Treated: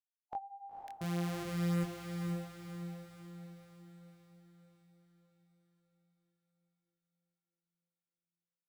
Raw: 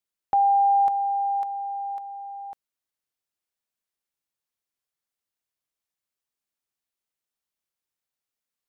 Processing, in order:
0:01.01–0:01.84: samples sorted by size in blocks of 256 samples
noise reduction from a noise print of the clip's start 27 dB
brickwall limiter −29.5 dBFS, peak gain reduction 8 dB
chorus effect 0.56 Hz, delay 17.5 ms, depth 7.6 ms
feedback delay with all-pass diffusion 494 ms, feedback 51%, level −4.5 dB
level −1 dB

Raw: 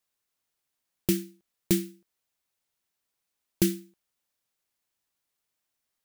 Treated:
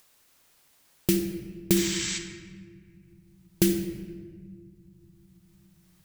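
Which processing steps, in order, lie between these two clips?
healed spectral selection 0:01.78–0:02.15, 850–8,100 Hz before
convolution reverb RT60 1.7 s, pre-delay 7 ms, DRR 5 dB
upward compression, threshold −49 dBFS
level +2 dB

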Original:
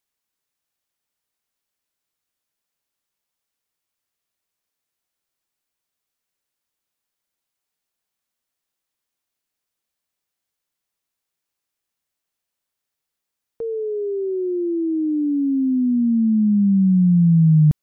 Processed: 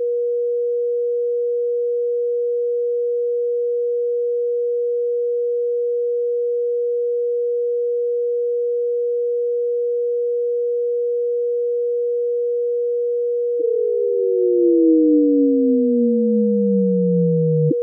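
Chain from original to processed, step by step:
ceiling on every frequency bin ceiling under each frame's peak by 29 dB
steady tone 480 Hz −26 dBFS
hollow resonant body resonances 330/490 Hz, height 17 dB, ringing for 30 ms
spectral peaks only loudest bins 8
level −8 dB

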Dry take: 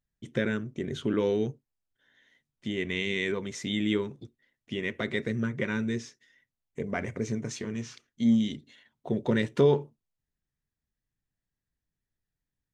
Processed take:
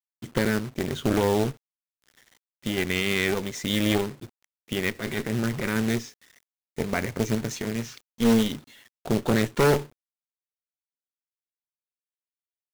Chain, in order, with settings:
harmonic generator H 3 −23 dB, 5 −17 dB, 6 −11 dB, 8 −29 dB, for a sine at −11 dBFS
0:04.95–0:05.76: transient designer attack −11 dB, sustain +3 dB
log-companded quantiser 4 bits

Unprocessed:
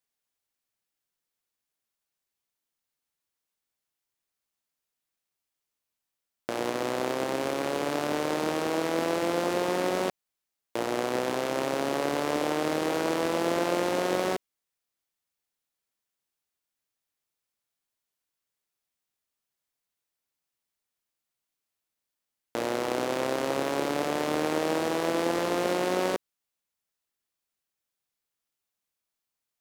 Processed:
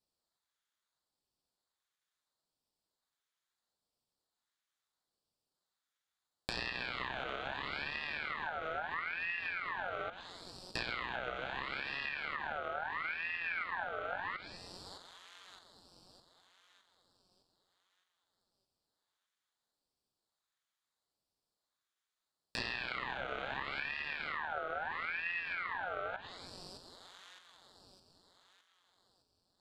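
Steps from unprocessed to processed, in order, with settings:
flat-topped bell 3,700 Hz +12 dB
phaser with its sweep stopped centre 1,800 Hz, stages 4
echo with a time of its own for lows and highs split 1,700 Hz, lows 103 ms, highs 612 ms, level −15 dB
on a send at −15.5 dB: convolution reverb RT60 0.85 s, pre-delay 6 ms
on the sum: treble cut that deepens with the level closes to 610 Hz, closed at −25 dBFS
low-pass filter 9,700 Hz
low-shelf EQ 270 Hz −10.5 dB
ring modulator whose carrier an LFO sweeps 1,600 Hz, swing 40%, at 0.75 Hz

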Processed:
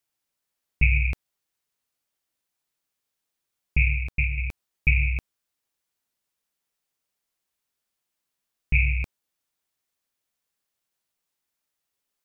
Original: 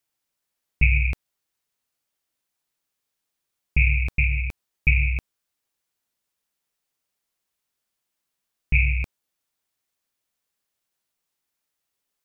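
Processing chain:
0:03.77–0:04.38: expander for the loud parts 1.5 to 1, over −28 dBFS
level −1.5 dB

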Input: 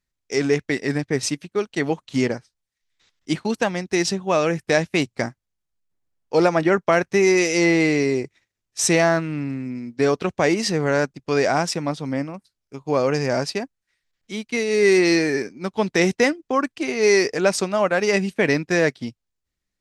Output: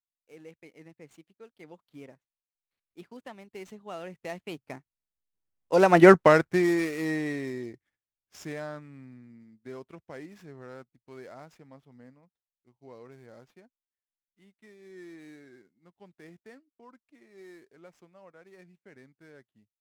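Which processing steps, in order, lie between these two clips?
running median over 9 samples
source passing by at 0:06.09, 33 m/s, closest 4.4 metres
pitch vibrato 0.45 Hz 23 cents
level +5 dB

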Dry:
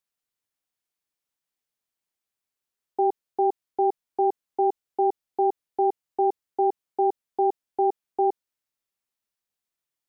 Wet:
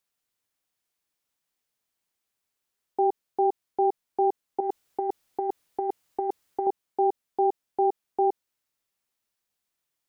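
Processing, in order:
0:04.60–0:06.67: compressor whose output falls as the input rises −28 dBFS, ratio −0.5
brickwall limiter −20 dBFS, peak gain reduction 5.5 dB
level +4.5 dB

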